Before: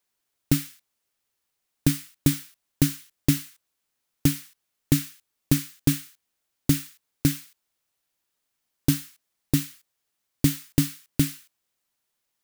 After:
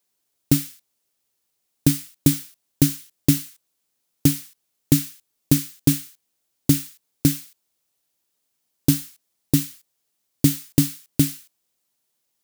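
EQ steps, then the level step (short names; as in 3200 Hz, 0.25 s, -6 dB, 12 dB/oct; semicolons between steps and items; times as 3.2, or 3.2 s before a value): low shelf 65 Hz -12 dB; bell 1600 Hz -7 dB 2.2 oct; +5.5 dB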